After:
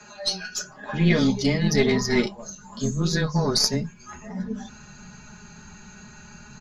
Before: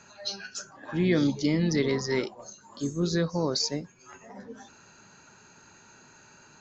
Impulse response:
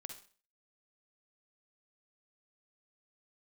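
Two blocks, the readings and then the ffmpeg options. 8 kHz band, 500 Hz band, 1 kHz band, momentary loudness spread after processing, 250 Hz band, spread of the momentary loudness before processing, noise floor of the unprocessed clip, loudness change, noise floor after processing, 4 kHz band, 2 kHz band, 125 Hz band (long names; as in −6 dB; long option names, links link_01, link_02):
can't be measured, +3.5 dB, +6.0 dB, 16 LU, +4.0 dB, 21 LU, −56 dBFS, +4.5 dB, −47 dBFS, +7.0 dB, +7.0 dB, +6.5 dB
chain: -filter_complex "[0:a]afreqshift=-14,asubboost=boost=8:cutoff=150,aecho=1:1:4.8:0.86,acrossover=split=180[link_01][link_02];[link_01]acompressor=threshold=-34dB:ratio=6[link_03];[link_02]aeval=exprs='0.299*(cos(1*acos(clip(val(0)/0.299,-1,1)))-cos(1*PI/2))+0.106*(cos(2*acos(clip(val(0)/0.299,-1,1)))-cos(2*PI/2))':channel_layout=same[link_04];[link_03][link_04]amix=inputs=2:normalize=0,flanger=delay=8.7:depth=1.5:regen=-53:speed=0.42:shape=sinusoidal,volume=8.5dB"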